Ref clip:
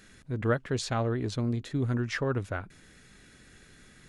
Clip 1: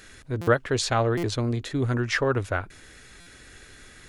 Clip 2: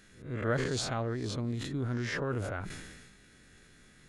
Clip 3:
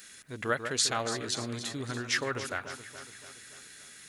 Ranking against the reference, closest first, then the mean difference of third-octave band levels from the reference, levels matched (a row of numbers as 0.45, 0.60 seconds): 1, 2, 3; 3.0, 4.5, 9.5 decibels